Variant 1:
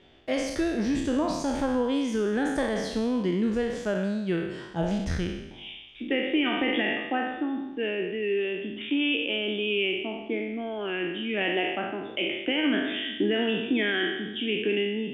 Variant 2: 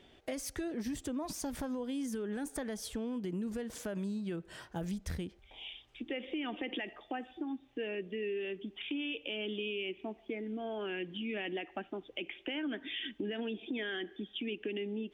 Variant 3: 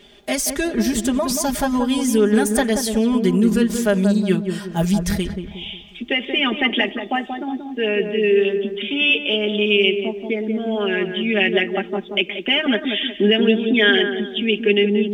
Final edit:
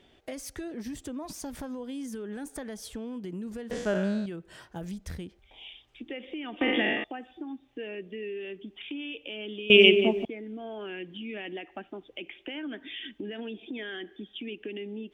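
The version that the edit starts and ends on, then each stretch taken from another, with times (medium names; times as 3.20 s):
2
3.71–4.26 s: from 1
6.61–7.04 s: from 1
9.70–10.25 s: from 3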